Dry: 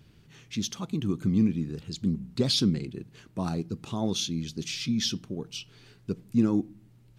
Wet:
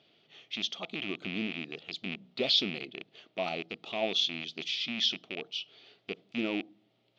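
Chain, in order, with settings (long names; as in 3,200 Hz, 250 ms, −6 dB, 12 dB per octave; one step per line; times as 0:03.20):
loose part that buzzes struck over −32 dBFS, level −25 dBFS
loudspeaker in its box 460–4,400 Hz, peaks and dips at 670 Hz +9 dB, 990 Hz −8 dB, 1,600 Hz −9 dB, 3,300 Hz +7 dB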